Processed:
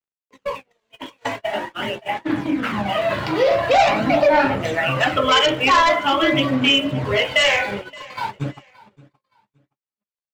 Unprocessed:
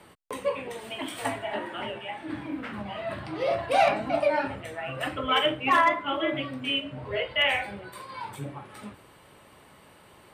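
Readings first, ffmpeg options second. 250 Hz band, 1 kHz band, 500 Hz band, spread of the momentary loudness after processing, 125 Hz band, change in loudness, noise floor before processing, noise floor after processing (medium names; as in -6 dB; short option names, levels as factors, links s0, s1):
+11.5 dB, +8.0 dB, +9.0 dB, 15 LU, +12.0 dB, +9.5 dB, -54 dBFS, under -85 dBFS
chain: -filter_complex "[0:a]highpass=110,aresample=16000,asoftclip=type=tanh:threshold=0.0841,aresample=44100,highshelf=f=4100:g=3.5,dynaudnorm=f=290:g=17:m=3.16,aeval=exprs='sgn(val(0))*max(abs(val(0))-0.00473,0)':c=same,agate=range=0.0178:threshold=0.0224:ratio=16:detection=peak,aphaser=in_gain=1:out_gain=1:delay=2.1:decay=0.39:speed=0.45:type=sinusoidal,acompressor=threshold=0.0631:ratio=2,asplit=2[s0][s1];[s1]aecho=0:1:571|1142:0.075|0.018[s2];[s0][s2]amix=inputs=2:normalize=0,volume=2.11"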